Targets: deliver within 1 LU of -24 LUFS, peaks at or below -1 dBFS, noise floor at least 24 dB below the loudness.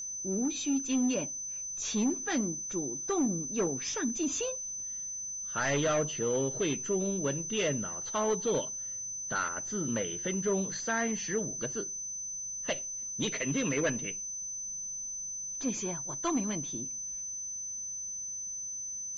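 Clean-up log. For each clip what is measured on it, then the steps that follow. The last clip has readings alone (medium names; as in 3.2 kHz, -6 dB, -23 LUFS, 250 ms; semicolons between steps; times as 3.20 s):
steady tone 6.1 kHz; tone level -36 dBFS; loudness -32.5 LUFS; peak level -22.0 dBFS; loudness target -24.0 LUFS
-> band-stop 6.1 kHz, Q 30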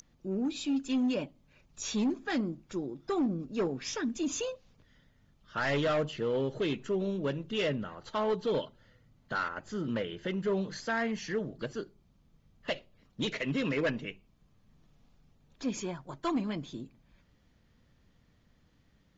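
steady tone not found; loudness -33.5 LUFS; peak level -23.5 dBFS; loudness target -24.0 LUFS
-> trim +9.5 dB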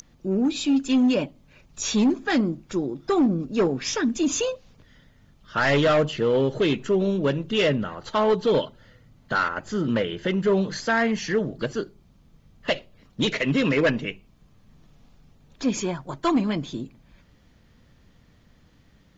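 loudness -24.0 LUFS; peak level -14.0 dBFS; noise floor -57 dBFS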